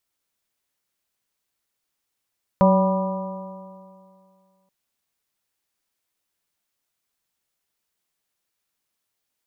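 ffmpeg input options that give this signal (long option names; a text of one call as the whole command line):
ffmpeg -f lavfi -i "aevalsrc='0.2*pow(10,-3*t/2.28)*sin(2*PI*187.35*t)+0.0299*pow(10,-3*t/2.28)*sin(2*PI*376.76*t)+0.178*pow(10,-3*t/2.28)*sin(2*PI*570.26*t)+0.0501*pow(10,-3*t/2.28)*sin(2*PI*769.82*t)+0.126*pow(10,-3*t/2.28)*sin(2*PI*977.29*t)+0.0335*pow(10,-3*t/2.28)*sin(2*PI*1194.39*t)':duration=2.08:sample_rate=44100" out.wav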